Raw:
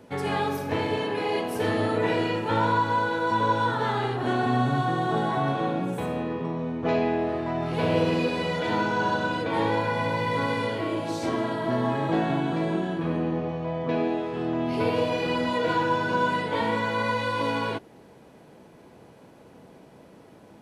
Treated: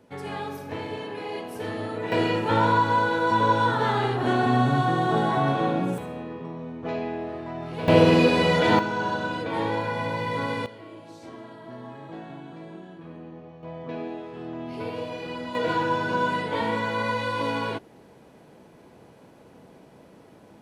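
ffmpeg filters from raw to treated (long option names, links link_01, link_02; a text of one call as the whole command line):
ffmpeg -i in.wav -af "asetnsamples=nb_out_samples=441:pad=0,asendcmd='2.12 volume volume 2.5dB;5.98 volume volume -6dB;7.88 volume volume 7dB;8.79 volume volume -2dB;10.66 volume volume -15dB;13.63 volume volume -8dB;15.55 volume volume -0.5dB',volume=-6.5dB" out.wav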